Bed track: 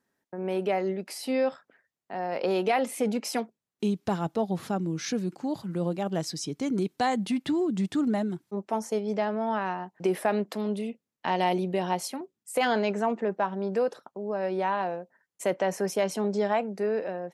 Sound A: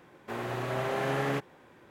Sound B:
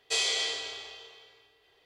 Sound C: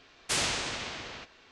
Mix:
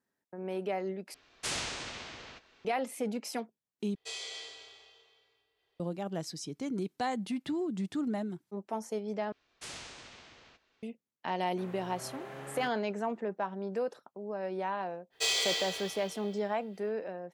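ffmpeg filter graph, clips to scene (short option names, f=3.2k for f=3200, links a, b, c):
-filter_complex "[3:a]asplit=2[a][b];[2:a]asplit=2[c][d];[0:a]volume=-7dB[e];[d]acrusher=bits=4:mode=log:mix=0:aa=0.000001[f];[e]asplit=4[g][h][i][j];[g]atrim=end=1.144[k];[a]atrim=end=1.51,asetpts=PTS-STARTPTS,volume=-6dB[l];[h]atrim=start=2.646:end=3.954[m];[c]atrim=end=1.85,asetpts=PTS-STARTPTS,volume=-13dB[n];[i]atrim=start=5.796:end=9.324[o];[b]atrim=end=1.51,asetpts=PTS-STARTPTS,volume=-15.5dB[p];[j]atrim=start=10.826[q];[1:a]atrim=end=1.9,asetpts=PTS-STARTPTS,volume=-14.5dB,afade=t=in:d=0.004:c=hsin,afade=t=out:st=1.896:d=0.004:c=hsin,adelay=11290[r];[f]atrim=end=1.85,asetpts=PTS-STARTPTS,volume=-1.5dB,afade=t=in:d=0.05,afade=t=out:st=1.8:d=0.05,adelay=15100[s];[k][l]acrossfade=d=0.004:c1=hsin:c2=hsin[t];[t][m]acrossfade=d=0.004:c1=hsin:c2=hsin[u];[u][n]acrossfade=d=0.004:c1=hsin:c2=hsin[v];[v][o]acrossfade=d=0.004:c1=hsin:c2=hsin[w];[w][p]acrossfade=d=0.004:c1=hsin:c2=hsin[x];[x][q]acrossfade=d=0.004:c1=hsin:c2=hsin[y];[y][r][s]amix=inputs=3:normalize=0"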